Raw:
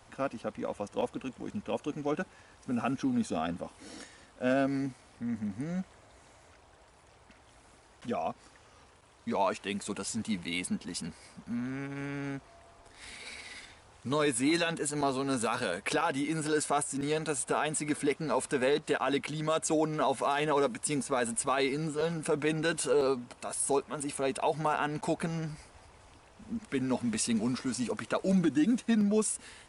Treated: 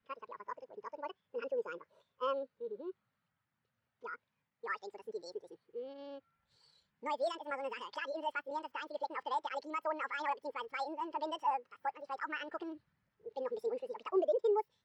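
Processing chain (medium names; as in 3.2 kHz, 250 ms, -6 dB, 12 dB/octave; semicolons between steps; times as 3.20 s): low-pass 2.9 kHz 12 dB/octave; speed mistake 7.5 ips tape played at 15 ips; spectral contrast expander 1.5:1; trim -6 dB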